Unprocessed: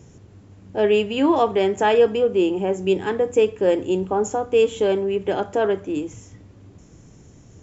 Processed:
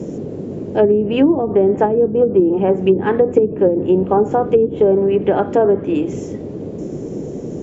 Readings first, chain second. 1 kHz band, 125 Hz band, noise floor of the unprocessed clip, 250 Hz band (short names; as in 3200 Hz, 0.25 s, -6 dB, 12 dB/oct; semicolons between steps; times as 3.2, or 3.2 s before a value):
+3.0 dB, +10.0 dB, -48 dBFS, +7.5 dB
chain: band noise 130–470 Hz -34 dBFS; treble ducked by the level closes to 330 Hz, closed at -13.5 dBFS; gain +7.5 dB